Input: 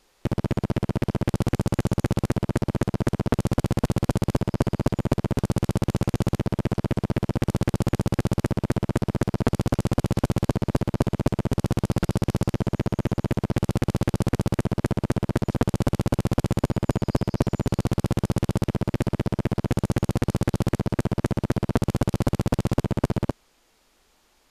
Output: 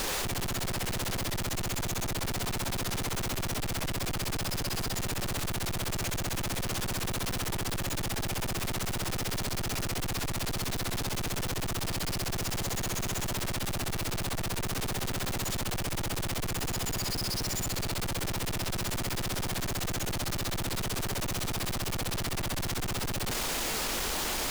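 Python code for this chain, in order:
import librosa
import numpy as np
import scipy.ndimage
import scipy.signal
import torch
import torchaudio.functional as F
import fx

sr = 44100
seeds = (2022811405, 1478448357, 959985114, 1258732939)

y = np.sign(x) * np.sqrt(np.mean(np.square(x)))
y = F.gain(torch.from_numpy(y), -7.0).numpy()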